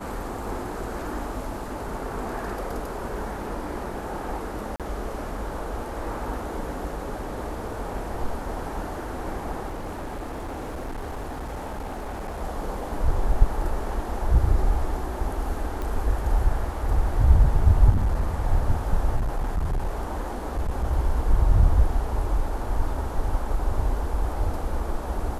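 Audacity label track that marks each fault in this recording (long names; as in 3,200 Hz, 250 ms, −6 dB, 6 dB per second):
4.760000	4.800000	drop-out 37 ms
9.680000	12.410000	clipping −29 dBFS
15.820000	15.820000	click −19 dBFS
17.900000	18.420000	clipping −18 dBFS
19.160000	20.850000	clipping −21 dBFS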